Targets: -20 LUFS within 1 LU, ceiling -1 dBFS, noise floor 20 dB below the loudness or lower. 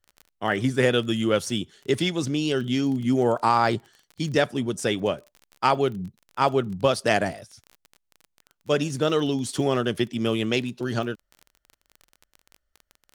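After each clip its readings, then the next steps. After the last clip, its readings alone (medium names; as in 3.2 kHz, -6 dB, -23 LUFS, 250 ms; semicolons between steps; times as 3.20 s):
tick rate 27 per s; loudness -24.5 LUFS; peak level -6.0 dBFS; loudness target -20.0 LUFS
-> de-click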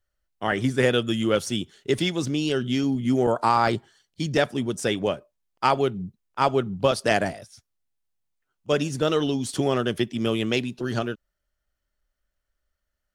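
tick rate 0 per s; loudness -24.5 LUFS; peak level -6.0 dBFS; loudness target -20.0 LUFS
-> trim +4.5 dB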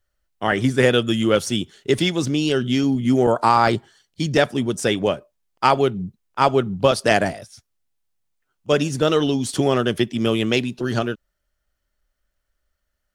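loudness -20.0 LUFS; peak level -1.5 dBFS; noise floor -76 dBFS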